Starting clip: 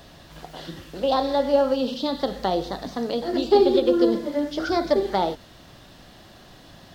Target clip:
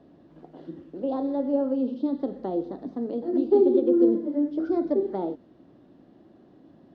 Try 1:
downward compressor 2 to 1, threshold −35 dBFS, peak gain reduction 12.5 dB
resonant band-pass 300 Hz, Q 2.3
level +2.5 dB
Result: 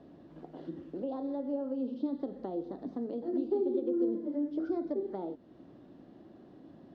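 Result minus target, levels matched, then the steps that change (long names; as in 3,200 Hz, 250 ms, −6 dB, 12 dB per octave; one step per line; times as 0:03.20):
downward compressor: peak gain reduction +12.5 dB
remove: downward compressor 2 to 1, threshold −35 dBFS, peak gain reduction 12.5 dB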